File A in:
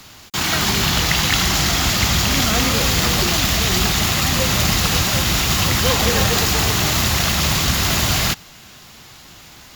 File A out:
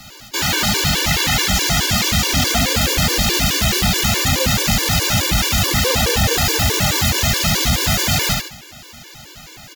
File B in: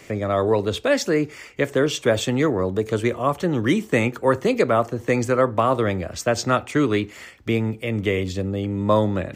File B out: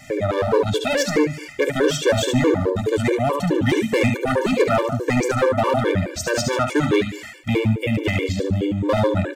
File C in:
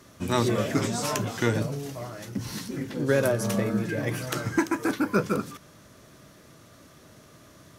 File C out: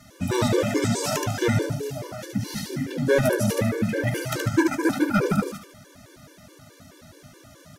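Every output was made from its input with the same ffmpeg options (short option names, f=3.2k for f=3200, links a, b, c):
-af "bandreject=f=1.1k:w=7.1,aecho=1:1:73|146|219|292:0.562|0.191|0.065|0.0221,asoftclip=type=hard:threshold=-16dB,afftfilt=real='re*gt(sin(2*PI*4.7*pts/sr)*(1-2*mod(floor(b*sr/1024/300),2)),0)':imag='im*gt(sin(2*PI*4.7*pts/sr)*(1-2*mod(floor(b*sr/1024/300),2)),0)':win_size=1024:overlap=0.75,volume=5.5dB"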